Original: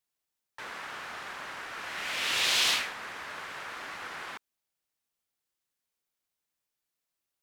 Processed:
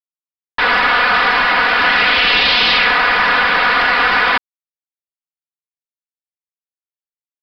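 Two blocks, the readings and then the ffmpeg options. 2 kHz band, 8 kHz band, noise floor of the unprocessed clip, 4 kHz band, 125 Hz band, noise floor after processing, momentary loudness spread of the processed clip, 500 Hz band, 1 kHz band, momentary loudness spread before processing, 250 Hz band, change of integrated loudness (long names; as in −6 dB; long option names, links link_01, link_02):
+23.0 dB, can't be measured, below −85 dBFS, +15.5 dB, +21.0 dB, below −85 dBFS, 4 LU, +23.0 dB, +25.0 dB, 17 LU, +23.5 dB, +19.5 dB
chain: -filter_complex "[0:a]asplit=2[link_01][link_02];[link_02]highpass=frequency=720:poles=1,volume=33dB,asoftclip=type=tanh:threshold=-12.5dB[link_03];[link_01][link_03]amix=inputs=2:normalize=0,lowpass=frequency=2700:poles=1,volume=-6dB,acontrast=73,aecho=1:1:4.1:0.96,aresample=11025,aeval=exprs='sgn(val(0))*max(abs(val(0))-0.00447,0)':channel_layout=same,aresample=44100,acrusher=bits=9:dc=4:mix=0:aa=0.000001"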